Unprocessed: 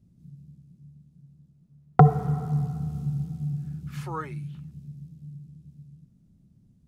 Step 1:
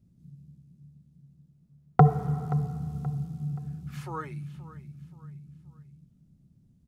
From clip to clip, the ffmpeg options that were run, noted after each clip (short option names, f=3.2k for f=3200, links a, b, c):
-af "aecho=1:1:527|1054|1581:0.15|0.0584|0.0228,volume=-2.5dB"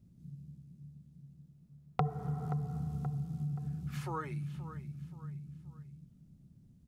-af "acompressor=threshold=-36dB:ratio=3,volume=1dB"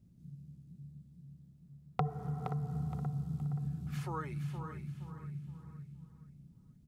-af "aecho=1:1:469|938|1407|1876:0.398|0.123|0.0383|0.0119,volume=-1.5dB"